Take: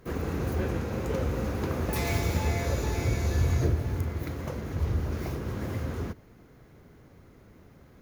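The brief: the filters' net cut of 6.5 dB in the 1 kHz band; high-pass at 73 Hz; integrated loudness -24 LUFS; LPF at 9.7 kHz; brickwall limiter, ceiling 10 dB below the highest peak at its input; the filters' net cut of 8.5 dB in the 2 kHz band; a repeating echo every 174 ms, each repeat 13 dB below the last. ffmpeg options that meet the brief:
-af "highpass=73,lowpass=9700,equalizer=f=1000:t=o:g=-7,equalizer=f=2000:t=o:g=-8.5,alimiter=level_in=1.06:limit=0.0631:level=0:latency=1,volume=0.944,aecho=1:1:174|348|522:0.224|0.0493|0.0108,volume=3.16"

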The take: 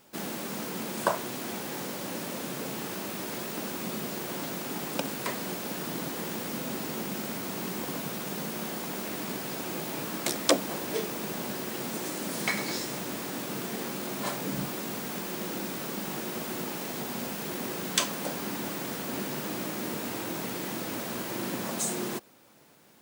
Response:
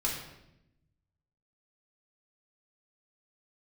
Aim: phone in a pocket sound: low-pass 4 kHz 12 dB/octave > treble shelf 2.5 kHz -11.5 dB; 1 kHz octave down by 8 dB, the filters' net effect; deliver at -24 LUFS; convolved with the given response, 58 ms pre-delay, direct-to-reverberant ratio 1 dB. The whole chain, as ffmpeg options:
-filter_complex "[0:a]equalizer=f=1000:t=o:g=-8.5,asplit=2[s0][s1];[1:a]atrim=start_sample=2205,adelay=58[s2];[s1][s2]afir=irnorm=-1:irlink=0,volume=0.447[s3];[s0][s3]amix=inputs=2:normalize=0,lowpass=4000,highshelf=f=2500:g=-11.5,volume=3.55"

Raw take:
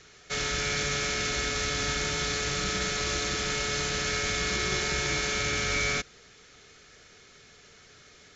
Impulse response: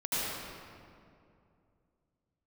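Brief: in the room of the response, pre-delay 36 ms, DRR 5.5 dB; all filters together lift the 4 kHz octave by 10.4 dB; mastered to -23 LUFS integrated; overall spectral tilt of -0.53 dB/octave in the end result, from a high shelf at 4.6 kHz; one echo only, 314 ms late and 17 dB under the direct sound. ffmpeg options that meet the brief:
-filter_complex "[0:a]equalizer=f=4000:t=o:g=8,highshelf=f=4600:g=9,aecho=1:1:314:0.141,asplit=2[s0][s1];[1:a]atrim=start_sample=2205,adelay=36[s2];[s1][s2]afir=irnorm=-1:irlink=0,volume=0.2[s3];[s0][s3]amix=inputs=2:normalize=0,volume=0.668"

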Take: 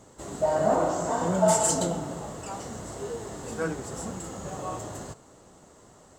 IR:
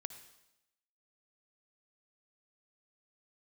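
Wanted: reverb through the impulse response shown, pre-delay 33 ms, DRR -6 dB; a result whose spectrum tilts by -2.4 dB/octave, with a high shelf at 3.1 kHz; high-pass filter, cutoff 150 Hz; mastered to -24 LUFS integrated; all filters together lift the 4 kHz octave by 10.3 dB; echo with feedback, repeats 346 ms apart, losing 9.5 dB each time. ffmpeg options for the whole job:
-filter_complex "[0:a]highpass=150,highshelf=f=3100:g=6.5,equalizer=f=4000:t=o:g=8,aecho=1:1:346|692|1038|1384:0.335|0.111|0.0365|0.012,asplit=2[s0][s1];[1:a]atrim=start_sample=2205,adelay=33[s2];[s1][s2]afir=irnorm=-1:irlink=0,volume=2.82[s3];[s0][s3]amix=inputs=2:normalize=0,volume=0.473"

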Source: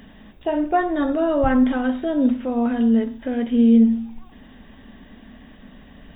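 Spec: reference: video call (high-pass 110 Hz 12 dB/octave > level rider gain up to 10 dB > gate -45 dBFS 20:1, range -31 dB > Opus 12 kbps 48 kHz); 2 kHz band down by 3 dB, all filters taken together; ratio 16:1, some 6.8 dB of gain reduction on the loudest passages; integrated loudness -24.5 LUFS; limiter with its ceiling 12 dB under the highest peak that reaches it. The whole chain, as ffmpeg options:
-af "equalizer=f=2000:t=o:g=-4,acompressor=threshold=0.141:ratio=16,alimiter=limit=0.0708:level=0:latency=1,highpass=110,dynaudnorm=m=3.16,agate=range=0.0282:threshold=0.00562:ratio=20,volume=2" -ar 48000 -c:a libopus -b:a 12k

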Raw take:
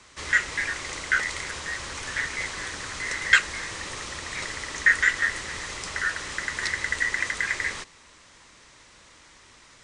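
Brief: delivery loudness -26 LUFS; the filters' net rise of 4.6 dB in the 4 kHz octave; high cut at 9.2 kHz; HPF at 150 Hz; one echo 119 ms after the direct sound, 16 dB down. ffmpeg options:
-af "highpass=150,lowpass=9200,equalizer=f=4000:t=o:g=6,aecho=1:1:119:0.158,volume=0.841"

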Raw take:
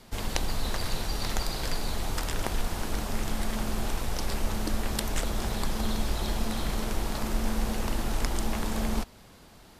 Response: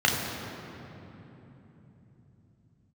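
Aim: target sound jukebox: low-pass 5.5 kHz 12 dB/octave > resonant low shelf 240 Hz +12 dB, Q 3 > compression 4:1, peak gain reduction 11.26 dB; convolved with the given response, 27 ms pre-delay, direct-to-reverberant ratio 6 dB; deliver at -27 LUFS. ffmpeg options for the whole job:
-filter_complex "[0:a]asplit=2[s0][s1];[1:a]atrim=start_sample=2205,adelay=27[s2];[s1][s2]afir=irnorm=-1:irlink=0,volume=0.0794[s3];[s0][s3]amix=inputs=2:normalize=0,lowpass=5500,lowshelf=f=240:t=q:w=3:g=12,acompressor=threshold=0.0891:ratio=4,volume=1.12"

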